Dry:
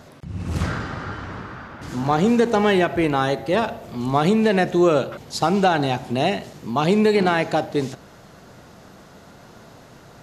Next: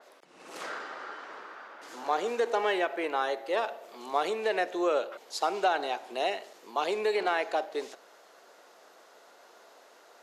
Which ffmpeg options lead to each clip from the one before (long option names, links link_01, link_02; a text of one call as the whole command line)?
ffmpeg -i in.wav -af "highpass=frequency=410:width=0.5412,highpass=frequency=410:width=1.3066,adynamicequalizer=threshold=0.0112:dfrequency=4100:dqfactor=0.7:tfrequency=4100:tqfactor=0.7:attack=5:release=100:ratio=0.375:range=2.5:mode=cutabove:tftype=highshelf,volume=-7.5dB" out.wav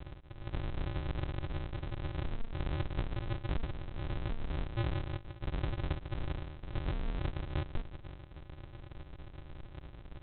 ffmpeg -i in.wav -af "alimiter=level_in=1dB:limit=-24dB:level=0:latency=1:release=26,volume=-1dB,acompressor=threshold=-42dB:ratio=6,aresample=8000,acrusher=samples=35:mix=1:aa=0.000001,aresample=44100,volume=10dB" out.wav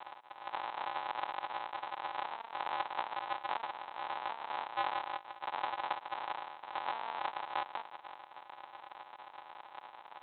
ffmpeg -i in.wav -af "highpass=frequency=880:width_type=q:width=5.3,volume=3dB" out.wav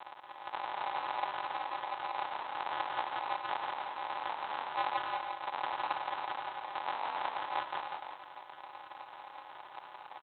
ffmpeg -i in.wav -af "aecho=1:1:170|272|333.2|369.9|392:0.631|0.398|0.251|0.158|0.1" out.wav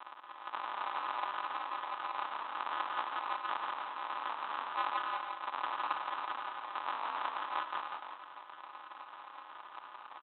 ffmpeg -i in.wav -af "highpass=230,equalizer=frequency=260:width_type=q:width=4:gain=3,equalizer=frequency=380:width_type=q:width=4:gain=-4,equalizer=frequency=550:width_type=q:width=4:gain=-5,equalizer=frequency=790:width_type=q:width=4:gain=-7,equalizer=frequency=1200:width_type=q:width=4:gain=7,equalizer=frequency=2100:width_type=q:width=4:gain=-4,lowpass=frequency=3800:width=0.5412,lowpass=frequency=3800:width=1.3066" out.wav